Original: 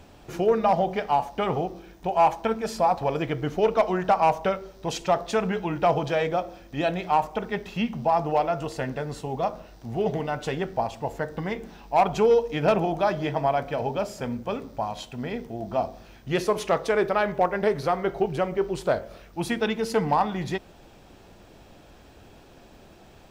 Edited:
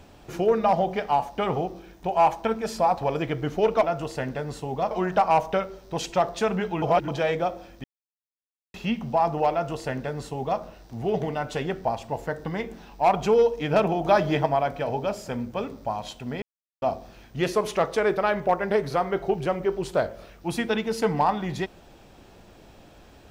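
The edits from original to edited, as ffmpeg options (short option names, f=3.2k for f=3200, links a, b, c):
-filter_complex "[0:a]asplit=11[a][b][c][d][e][f][g][h][i][j][k];[a]atrim=end=3.832[l];[b]atrim=start=8.438:end=9.522[m];[c]atrim=start=3.828:end=5.742[n];[d]atrim=start=5.738:end=6.002,asetpts=PTS-STARTPTS,areverse[o];[e]atrim=start=5.998:end=6.76,asetpts=PTS-STARTPTS,afade=t=out:st=0.758:d=0.004:c=hsin[p];[f]atrim=start=6.76:end=7.66,asetpts=PTS-STARTPTS,volume=0[q];[g]atrim=start=7.66:end=12.972,asetpts=PTS-STARTPTS,afade=t=in:d=0.004:c=hsin[r];[h]atrim=start=12.968:end=13.382,asetpts=PTS-STARTPTS,volume=4dB[s];[i]atrim=start=13.378:end=15.34,asetpts=PTS-STARTPTS,afade=t=out:st=1.958:d=0.004:c=hsin[t];[j]atrim=start=15.34:end=15.74,asetpts=PTS-STARTPTS,volume=0[u];[k]atrim=start=15.74,asetpts=PTS-STARTPTS,afade=t=in:d=0.004:c=hsin[v];[l][m]acrossfade=d=0.004:c1=hsin:c2=hsin[w];[w][n]acrossfade=d=0.004:c1=hsin:c2=hsin[x];[x][o]acrossfade=d=0.004:c1=hsin:c2=hsin[y];[p][q][r]concat=n=3:v=0:a=1[z];[y][z]acrossfade=d=0.004:c1=hsin:c2=hsin[aa];[aa][s]acrossfade=d=0.004:c1=hsin:c2=hsin[ab];[t][u][v]concat=n=3:v=0:a=1[ac];[ab][ac]acrossfade=d=0.004:c1=hsin:c2=hsin"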